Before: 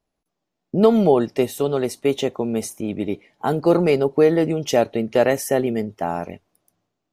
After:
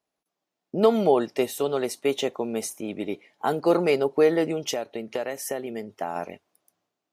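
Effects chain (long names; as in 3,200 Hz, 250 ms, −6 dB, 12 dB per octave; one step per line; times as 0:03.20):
0:04.59–0:06.16: downward compressor 12 to 1, threshold −22 dBFS, peak gain reduction 11.5 dB
high-pass filter 440 Hz 6 dB per octave
level −1 dB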